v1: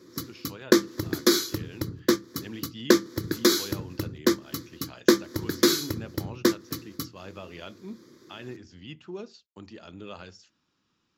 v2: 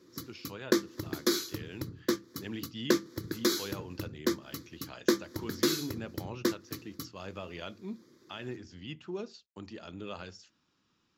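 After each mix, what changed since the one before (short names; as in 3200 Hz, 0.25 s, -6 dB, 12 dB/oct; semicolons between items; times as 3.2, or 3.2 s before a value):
background -7.5 dB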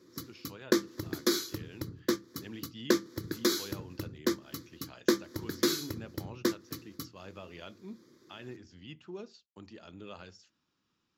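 speech -5.0 dB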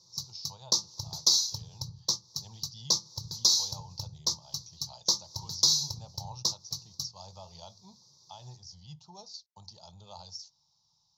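speech +3.0 dB; master: add EQ curve 100 Hz 0 dB, 150 Hz +2 dB, 290 Hz -30 dB, 880 Hz +8 dB, 1600 Hz -29 dB, 2800 Hz -17 dB, 4000 Hz +9 dB, 5900 Hz +15 dB, 8700 Hz -8 dB, 15000 Hz -6 dB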